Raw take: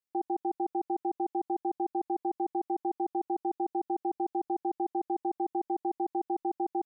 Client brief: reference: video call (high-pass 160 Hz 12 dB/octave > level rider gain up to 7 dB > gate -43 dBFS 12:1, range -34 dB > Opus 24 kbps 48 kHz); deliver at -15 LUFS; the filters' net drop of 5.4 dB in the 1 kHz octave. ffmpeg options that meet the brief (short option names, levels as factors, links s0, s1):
-af "highpass=160,equalizer=f=1000:t=o:g=-8,dynaudnorm=m=2.24,agate=range=0.02:threshold=0.00708:ratio=12,volume=11.2" -ar 48000 -c:a libopus -b:a 24k